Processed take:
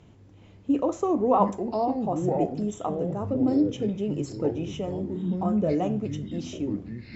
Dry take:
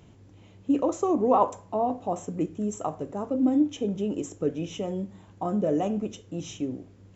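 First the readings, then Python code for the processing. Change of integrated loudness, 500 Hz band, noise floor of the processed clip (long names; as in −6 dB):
+1.0 dB, +1.0 dB, −52 dBFS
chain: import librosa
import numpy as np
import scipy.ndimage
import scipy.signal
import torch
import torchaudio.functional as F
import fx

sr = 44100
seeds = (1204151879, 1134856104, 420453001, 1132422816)

y = fx.air_absorb(x, sr, metres=53.0)
y = fx.echo_pitch(y, sr, ms=420, semitones=-6, count=3, db_per_echo=-6.0)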